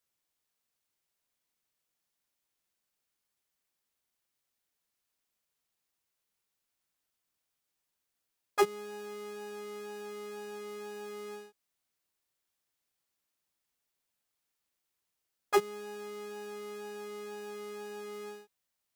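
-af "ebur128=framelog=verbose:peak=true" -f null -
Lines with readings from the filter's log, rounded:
Integrated loudness:
  I:         -38.3 LUFS
  Threshold: -48.6 LUFS
Loudness range:
  LRA:        10.0 LU
  Threshold: -60.3 LUFS
  LRA low:   -48.2 LUFS
  LRA high:  -38.2 LUFS
True peak:
  Peak:      -15.1 dBFS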